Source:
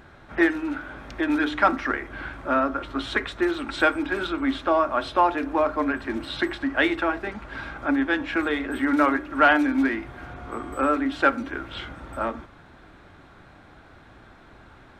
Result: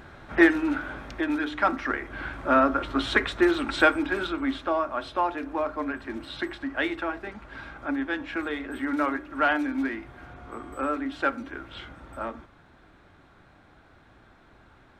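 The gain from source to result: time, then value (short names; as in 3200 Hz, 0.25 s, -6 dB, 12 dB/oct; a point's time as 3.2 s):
0.9 s +2.5 dB
1.43 s -5.5 dB
2.62 s +2.5 dB
3.62 s +2.5 dB
4.9 s -6 dB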